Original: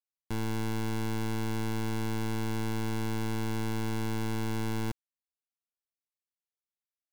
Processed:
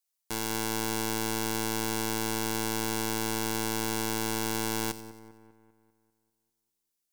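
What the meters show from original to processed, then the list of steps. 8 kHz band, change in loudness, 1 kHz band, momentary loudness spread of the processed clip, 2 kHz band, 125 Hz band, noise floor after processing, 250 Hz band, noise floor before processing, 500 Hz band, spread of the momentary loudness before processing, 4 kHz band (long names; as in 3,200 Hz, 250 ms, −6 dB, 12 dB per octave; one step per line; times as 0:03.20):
+13.5 dB, +3.5 dB, +5.5 dB, 3 LU, +5.5 dB, −6.5 dB, −82 dBFS, 0.0 dB, below −85 dBFS, +4.0 dB, 2 LU, +9.0 dB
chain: bass and treble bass −14 dB, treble +10 dB
echo with a time of its own for lows and highs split 2,200 Hz, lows 198 ms, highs 92 ms, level −14 dB
level +4 dB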